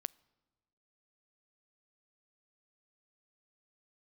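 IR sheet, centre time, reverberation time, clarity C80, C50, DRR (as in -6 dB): 1 ms, 1.3 s, 28.0 dB, 26.0 dB, 24.0 dB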